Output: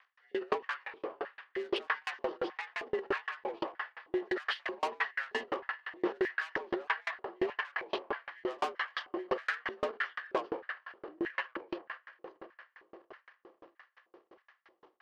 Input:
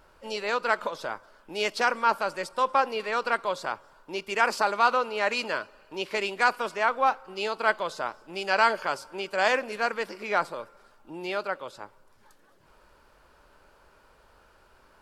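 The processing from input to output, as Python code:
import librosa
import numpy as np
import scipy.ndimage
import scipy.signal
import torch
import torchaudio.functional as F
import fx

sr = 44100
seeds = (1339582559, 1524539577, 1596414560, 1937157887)

p1 = fx.partial_stretch(x, sr, pct=85)
p2 = scipy.signal.sosfilt(scipy.signal.butter(6, 5100.0, 'lowpass', fs=sr, output='sos'), p1)
p3 = fx.high_shelf(p2, sr, hz=2200.0, db=-4.0)
p4 = fx.hum_notches(p3, sr, base_hz=50, count=8)
p5 = p4 + fx.echo_diffused(p4, sr, ms=456, feedback_pct=70, wet_db=-15.5, dry=0)
p6 = 10.0 ** (-27.5 / 20.0) * np.tanh(p5 / 10.0 ** (-27.5 / 20.0))
p7 = fx.filter_lfo_highpass(p6, sr, shape='square', hz=1.6, low_hz=340.0, high_hz=1700.0, q=4.0)
p8 = np.clip(p7, -10.0 ** (-25.0 / 20.0), 10.0 ** (-25.0 / 20.0))
p9 = p7 + F.gain(torch.from_numpy(p8), -10.0).numpy()
p10 = fx.transient(p9, sr, attack_db=-4, sustain_db=11)
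y = fx.tremolo_decay(p10, sr, direction='decaying', hz=5.8, depth_db=37)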